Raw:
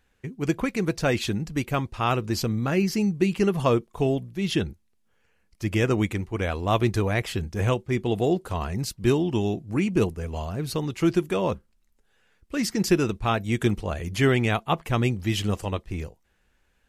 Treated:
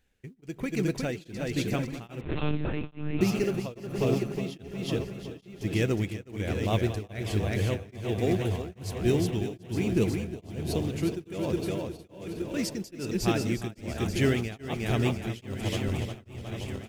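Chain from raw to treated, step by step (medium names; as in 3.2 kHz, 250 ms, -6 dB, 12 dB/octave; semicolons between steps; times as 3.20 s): backward echo that repeats 621 ms, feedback 61%, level -8 dB; peaking EQ 1.1 kHz -9.5 dB 0.88 oct; in parallel at -8.5 dB: short-mantissa float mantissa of 2-bit; on the sum: feedback delay 362 ms, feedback 38%, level -4 dB; on a send at -19 dB: reverberation RT60 1.6 s, pre-delay 122 ms; 2.21–3.21 s: on the sum: monotone LPC vocoder at 8 kHz 150 Hz; tremolo of two beating tones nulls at 1.2 Hz; trim -6 dB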